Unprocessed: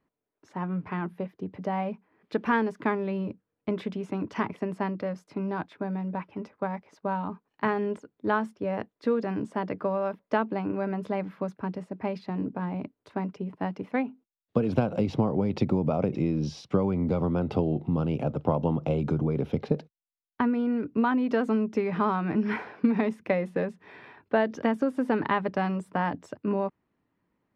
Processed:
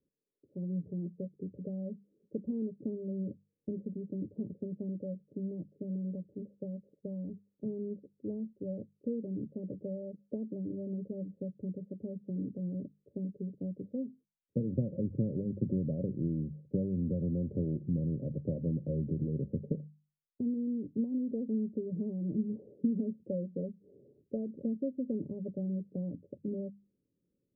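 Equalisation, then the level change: notches 50/100/150/200 Hz; dynamic EQ 440 Hz, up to -8 dB, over -41 dBFS, Q 1.7; rippled Chebyshev low-pass 570 Hz, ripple 3 dB; -3.0 dB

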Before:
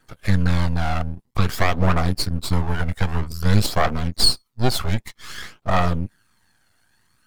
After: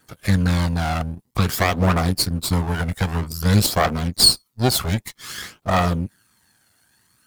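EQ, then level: HPF 110 Hz 6 dB/oct; low shelf 440 Hz +4.5 dB; high shelf 5600 Hz +10 dB; 0.0 dB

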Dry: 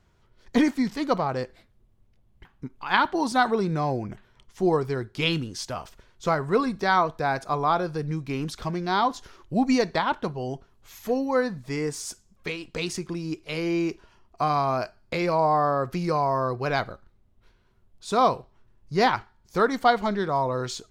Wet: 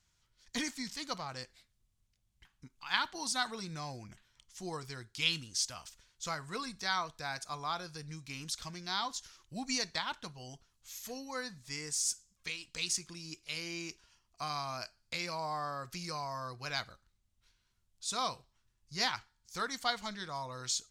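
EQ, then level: passive tone stack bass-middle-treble 5-5-5; bell 6900 Hz +10 dB 1.7 oct; notch 400 Hz, Q 12; 0.0 dB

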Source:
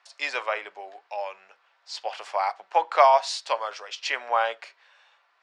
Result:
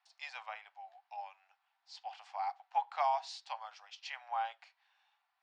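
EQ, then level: resonant high-pass 780 Hz, resonance Q 8; LPF 3900 Hz 12 dB/oct; differentiator; -7.0 dB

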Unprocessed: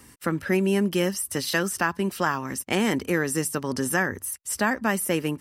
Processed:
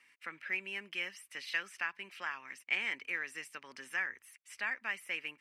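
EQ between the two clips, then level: band-pass 2300 Hz, Q 4.4; 0.0 dB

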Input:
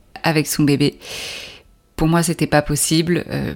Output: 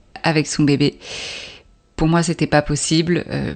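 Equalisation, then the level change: brick-wall FIR low-pass 8600 Hz; notch 1100 Hz, Q 29; 0.0 dB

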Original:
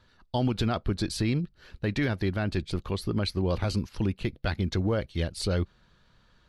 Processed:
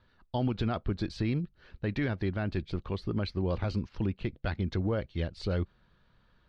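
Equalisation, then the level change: air absorption 180 m; -3.0 dB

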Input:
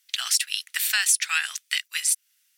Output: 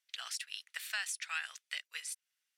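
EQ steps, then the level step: band-pass 430 Hz, Q 2.4; tilt +3.5 dB/oct; +4.0 dB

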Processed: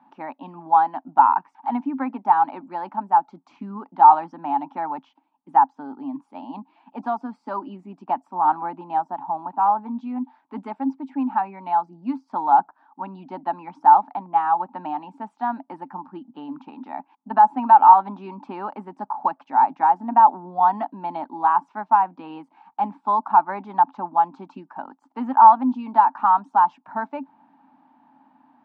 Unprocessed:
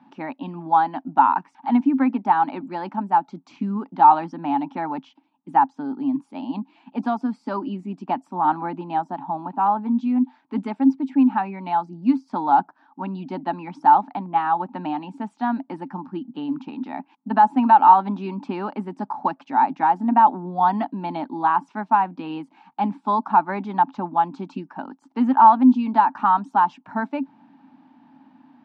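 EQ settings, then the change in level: bell 910 Hz +12.5 dB 2.1 oct; -11.0 dB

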